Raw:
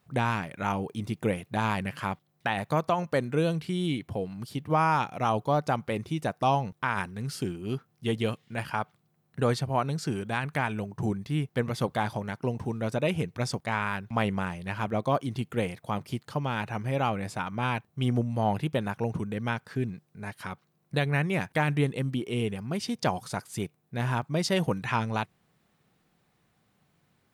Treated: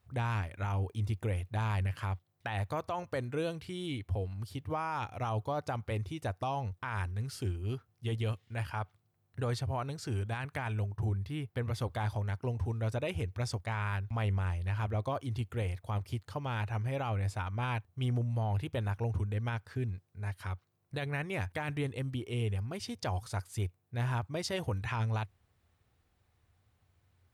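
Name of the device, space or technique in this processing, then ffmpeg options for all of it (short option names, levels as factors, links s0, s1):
car stereo with a boomy subwoofer: -filter_complex "[0:a]asettb=1/sr,asplit=3[s0][s1][s2];[s0]atrim=end=10.964[s3];[s1]atrim=start=10.96:end=11.73,asetpts=PTS-STARTPTS,afade=t=in:d=0.004:c=qsin,afade=t=out:st=0.766:d=0.004:c=qsin,equalizer=f=6700:t=o:w=0.62:g=-5.5[s4];[s2]atrim=start=11.726[s5];[s3][s4]acrossfade=d=0.004:c1=hsin:c2=qsin[s6];[s6][s5]acrossfade=d=0.004:c1=qsin:c2=hsin,lowshelf=f=120:t=q:w=3:g=10.5,alimiter=limit=0.112:level=0:latency=1:release=16,volume=0.501"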